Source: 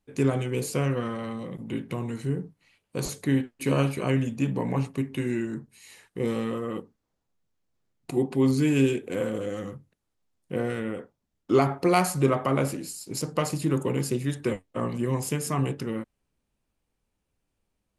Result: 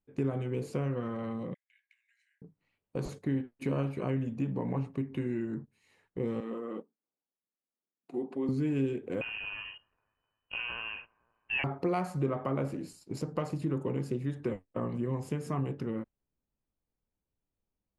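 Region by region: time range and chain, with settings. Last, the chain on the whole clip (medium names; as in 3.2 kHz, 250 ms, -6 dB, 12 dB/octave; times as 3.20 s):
1.54–2.42 s: rippled Chebyshev high-pass 1.6 kHz, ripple 6 dB + treble shelf 2.8 kHz -7 dB
6.40–8.49 s: high-pass 210 Hz 24 dB/octave + flange 2 Hz, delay 0.9 ms, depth 7.4 ms, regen +71%
9.21–11.64 s: feedback echo behind a high-pass 255 ms, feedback 63%, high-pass 2.2 kHz, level -14 dB + frequency inversion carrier 3 kHz
whole clip: gate -39 dBFS, range -9 dB; low-pass 1.1 kHz 6 dB/octave; compression 2:1, threshold -33 dBFS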